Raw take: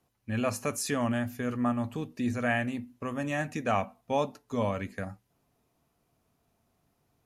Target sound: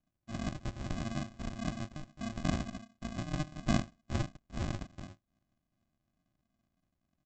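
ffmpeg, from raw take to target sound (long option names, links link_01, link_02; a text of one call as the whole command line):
ffmpeg -i in.wav -af "lowshelf=frequency=400:gain=-12,aresample=16000,acrusher=samples=35:mix=1:aa=0.000001,aresample=44100,volume=-1.5dB" out.wav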